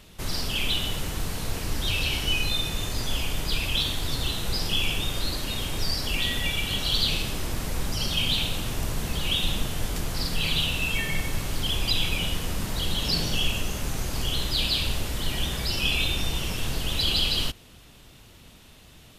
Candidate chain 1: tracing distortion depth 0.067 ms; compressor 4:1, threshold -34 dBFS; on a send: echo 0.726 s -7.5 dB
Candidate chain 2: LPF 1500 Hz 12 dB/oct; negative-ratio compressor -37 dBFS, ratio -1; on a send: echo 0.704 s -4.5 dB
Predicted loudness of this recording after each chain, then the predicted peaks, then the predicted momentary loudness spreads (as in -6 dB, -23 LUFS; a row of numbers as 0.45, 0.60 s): -36.0, -39.0 LUFS; -21.5, -19.0 dBFS; 4, 4 LU